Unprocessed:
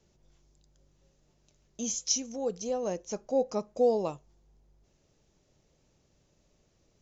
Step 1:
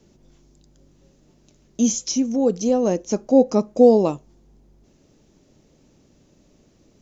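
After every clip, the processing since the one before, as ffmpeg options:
ffmpeg -i in.wav -filter_complex "[0:a]equalizer=frequency=260:width_type=o:width=1.1:gain=10.5,acrossover=split=2400[link_01][link_02];[link_02]alimiter=limit=-24dB:level=0:latency=1:release=451[link_03];[link_01][link_03]amix=inputs=2:normalize=0,volume=8.5dB" out.wav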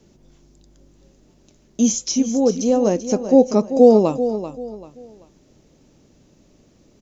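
ffmpeg -i in.wav -af "aecho=1:1:388|776|1164:0.282|0.0874|0.0271,volume=2dB" out.wav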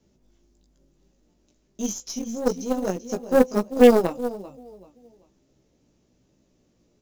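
ffmpeg -i in.wav -af "flanger=delay=15:depth=2.2:speed=1.1,acrusher=bits=7:mode=log:mix=0:aa=0.000001,aeval=exprs='0.841*(cos(1*acos(clip(val(0)/0.841,-1,1)))-cos(1*PI/2))+0.0376*(cos(6*acos(clip(val(0)/0.841,-1,1)))-cos(6*PI/2))+0.0668*(cos(7*acos(clip(val(0)/0.841,-1,1)))-cos(7*PI/2))':channel_layout=same,volume=-1dB" out.wav

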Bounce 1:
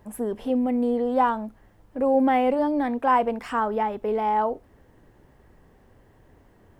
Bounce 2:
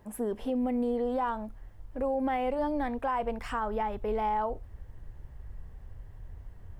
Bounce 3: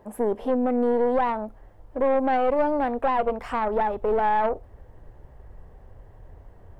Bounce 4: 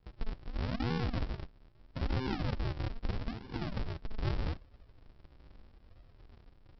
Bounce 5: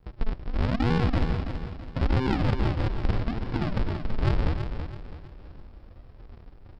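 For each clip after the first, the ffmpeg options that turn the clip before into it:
ffmpeg -i in.wav -af "asubboost=boost=11.5:cutoff=83,alimiter=limit=-19dB:level=0:latency=1:release=118,volume=-3dB" out.wav
ffmpeg -i in.wav -af "equalizer=frequency=570:width_type=o:width=2.5:gain=12.5,aeval=exprs='(tanh(5.62*val(0)+0.55)-tanh(0.55))/5.62':channel_layout=same" out.wav
ffmpeg -i in.wav -af "aresample=11025,acrusher=samples=34:mix=1:aa=0.000001:lfo=1:lforange=34:lforate=0.79,aresample=44100,flanger=delay=2.2:depth=1.4:regen=-84:speed=0.44:shape=sinusoidal,volume=-6.5dB" out.wav
ffmpeg -i in.wav -filter_complex "[0:a]asplit=2[link_01][link_02];[link_02]adynamicsmooth=sensitivity=4:basefreq=2600,volume=0dB[link_03];[link_01][link_03]amix=inputs=2:normalize=0,aecho=1:1:329|658|987|1316:0.398|0.151|0.0575|0.0218,volume=3.5dB" out.wav

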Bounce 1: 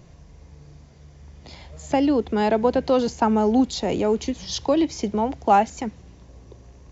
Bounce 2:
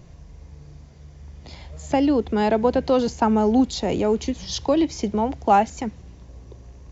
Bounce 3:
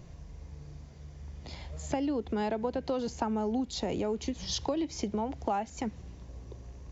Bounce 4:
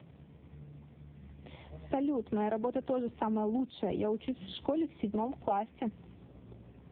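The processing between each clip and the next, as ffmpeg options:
ffmpeg -i in.wav -af "lowshelf=frequency=99:gain=6" out.wav
ffmpeg -i in.wav -af "acompressor=threshold=-26dB:ratio=5,volume=-3dB" out.wav
ffmpeg -i in.wav -ar 8000 -c:a libopencore_amrnb -b:a 5150 out.amr

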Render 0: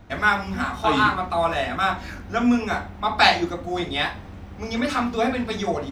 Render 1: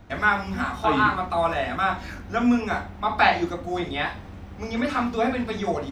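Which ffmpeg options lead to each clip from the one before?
ffmpeg -i in.wav -filter_complex "[0:a]acrossover=split=2900[link_01][link_02];[link_02]acompressor=threshold=-41dB:ratio=4:attack=1:release=60[link_03];[link_01][link_03]amix=inputs=2:normalize=0,volume=-1dB" out.wav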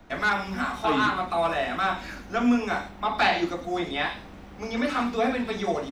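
ffmpeg -i in.wav -filter_complex "[0:a]equalizer=frequency=89:width=1.2:gain=-12,acrossover=split=180|540|2200[link_01][link_02][link_03][link_04];[link_03]asoftclip=type=tanh:threshold=-21dB[link_05];[link_04]aecho=1:1:106:0.422[link_06];[link_01][link_02][link_05][link_06]amix=inputs=4:normalize=0" out.wav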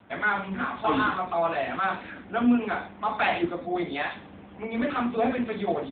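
ffmpeg -i in.wav -ar 8000 -c:a libopencore_amrnb -b:a 7950 out.amr

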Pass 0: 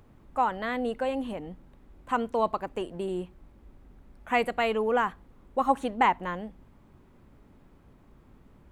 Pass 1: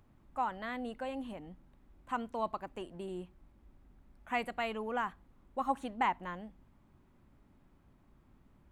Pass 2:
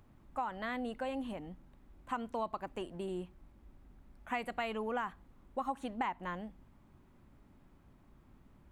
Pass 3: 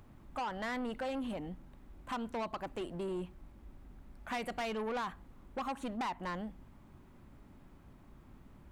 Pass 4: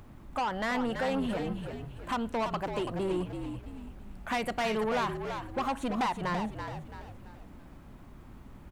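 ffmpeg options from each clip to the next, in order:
ffmpeg -i in.wav -af "equalizer=frequency=460:width_type=o:width=0.43:gain=-6,volume=-8dB" out.wav
ffmpeg -i in.wav -af "acompressor=threshold=-35dB:ratio=6,volume=2.5dB" out.wav
ffmpeg -i in.wav -af "asoftclip=type=tanh:threshold=-38dB,volume=5dB" out.wav
ffmpeg -i in.wav -filter_complex "[0:a]asplit=6[link_01][link_02][link_03][link_04][link_05][link_06];[link_02]adelay=333,afreqshift=-58,volume=-7dB[link_07];[link_03]adelay=666,afreqshift=-116,volume=-14.7dB[link_08];[link_04]adelay=999,afreqshift=-174,volume=-22.5dB[link_09];[link_05]adelay=1332,afreqshift=-232,volume=-30.2dB[link_10];[link_06]adelay=1665,afreqshift=-290,volume=-38dB[link_11];[link_01][link_07][link_08][link_09][link_10][link_11]amix=inputs=6:normalize=0,volume=6.5dB" out.wav

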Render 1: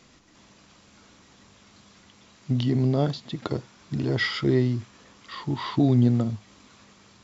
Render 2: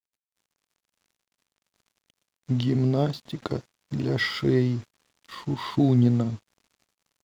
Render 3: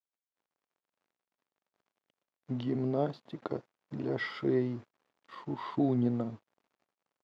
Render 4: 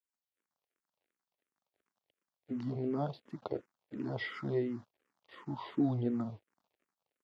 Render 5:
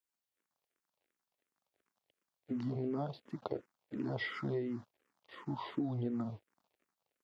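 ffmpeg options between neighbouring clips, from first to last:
ffmpeg -i in.wav -af "aeval=exprs='sgn(val(0))*max(abs(val(0))-0.00447,0)':channel_layout=same" out.wav
ffmpeg -i in.wav -af "bandpass=frequency=630:width_type=q:width=0.61:csg=0,volume=-3.5dB" out.wav
ffmpeg -i in.wav -filter_complex "[0:a]asplit=2[link_01][link_02];[link_02]afreqshift=-2.8[link_03];[link_01][link_03]amix=inputs=2:normalize=1" out.wav
ffmpeg -i in.wav -af "acompressor=threshold=-34dB:ratio=6,volume=1.5dB" out.wav

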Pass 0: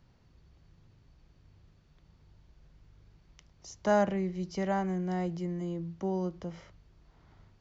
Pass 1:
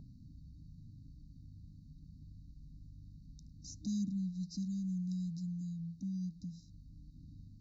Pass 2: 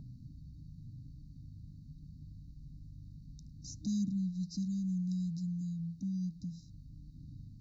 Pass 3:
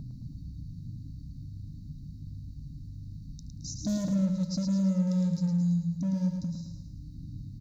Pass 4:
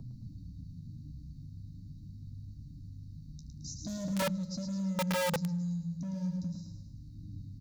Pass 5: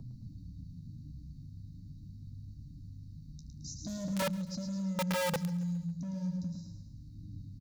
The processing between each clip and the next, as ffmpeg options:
ffmpeg -i in.wav -filter_complex "[0:a]afftfilt=real='re*(1-between(b*sr/4096,310,3700))':imag='im*(1-between(b*sr/4096,310,3700))':win_size=4096:overlap=0.75,lowshelf=frequency=87:gain=-6,acrossover=split=1200[link_01][link_02];[link_01]acompressor=mode=upward:threshold=-38dB:ratio=2.5[link_03];[link_03][link_02]amix=inputs=2:normalize=0,volume=-2.5dB" out.wav
ffmpeg -i in.wav -af "equalizer=frequency=130:width=4.5:gain=8,volume=2dB" out.wav
ffmpeg -i in.wav -af "volume=34dB,asoftclip=hard,volume=-34dB,aecho=1:1:109|218|327|436|545|654:0.501|0.246|0.12|0.059|0.0289|0.0142,volume=8dB" out.wav
ffmpeg -i in.wav -filter_complex "[0:a]acrossover=split=180|630[link_01][link_02][link_03];[link_02]alimiter=level_in=9.5dB:limit=-24dB:level=0:latency=1:release=16,volume=-9.5dB[link_04];[link_01][link_04][link_03]amix=inputs=3:normalize=0,flanger=delay=8.5:depth=5.4:regen=50:speed=0.43:shape=triangular,aeval=exprs='(mod(21.1*val(0)+1,2)-1)/21.1':channel_layout=same" out.wav
ffmpeg -i in.wav -af "aecho=1:1:137|274|411|548:0.0891|0.0463|0.0241|0.0125,volume=-1dB" out.wav

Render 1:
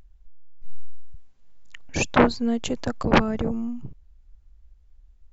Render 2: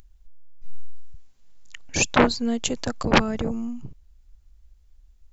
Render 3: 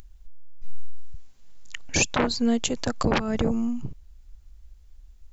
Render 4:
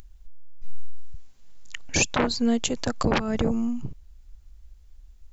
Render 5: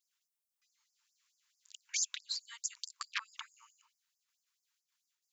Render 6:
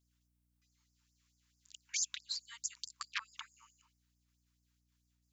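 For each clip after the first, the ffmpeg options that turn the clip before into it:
ffmpeg -i in.wav -af "highshelf=frequency=3400:gain=11,volume=-1dB" out.wav
ffmpeg -i in.wav -filter_complex "[0:a]asplit=2[link_01][link_02];[link_02]acompressor=threshold=-27dB:ratio=6,volume=-2.5dB[link_03];[link_01][link_03]amix=inputs=2:normalize=0,alimiter=limit=-10.5dB:level=0:latency=1:release=175" out.wav
ffmpeg -i in.wav -af anull out.wav
ffmpeg -i in.wav -af "agate=range=-33dB:threshold=-45dB:ratio=3:detection=peak,afftfilt=real='re*gte(b*sr/1024,860*pow(4800/860,0.5+0.5*sin(2*PI*4.6*pts/sr)))':imag='im*gte(b*sr/1024,860*pow(4800/860,0.5+0.5*sin(2*PI*4.6*pts/sr)))':win_size=1024:overlap=0.75,volume=-7.5dB" out.wav
ffmpeg -i in.wav -af "aeval=exprs='val(0)+0.000158*(sin(2*PI*60*n/s)+sin(2*PI*2*60*n/s)/2+sin(2*PI*3*60*n/s)/3+sin(2*PI*4*60*n/s)/4+sin(2*PI*5*60*n/s)/5)':channel_layout=same,volume=-1.5dB" out.wav

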